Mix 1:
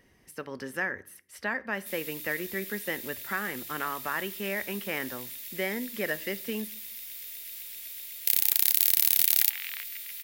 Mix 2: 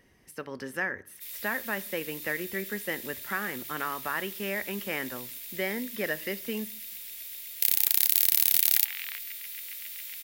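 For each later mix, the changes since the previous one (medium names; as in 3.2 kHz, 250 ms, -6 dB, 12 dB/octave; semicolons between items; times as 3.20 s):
background: entry -0.65 s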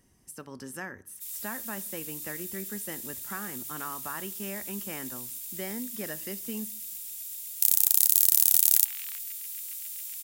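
master: add ten-band graphic EQ 500 Hz -8 dB, 2 kHz -11 dB, 4 kHz -5 dB, 8 kHz +9 dB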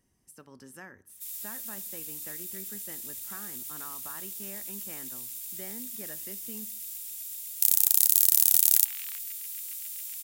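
speech -8.0 dB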